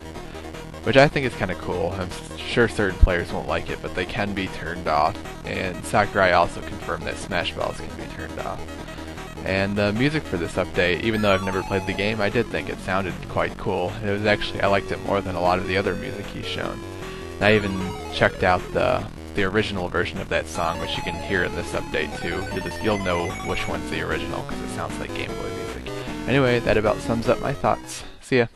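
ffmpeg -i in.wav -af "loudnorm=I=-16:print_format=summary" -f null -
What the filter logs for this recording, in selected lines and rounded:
Input Integrated:    -23.6 LUFS
Input True Peak:      -2.0 dBTP
Input LRA:             2.8 LU
Input Threshold:     -33.9 LUFS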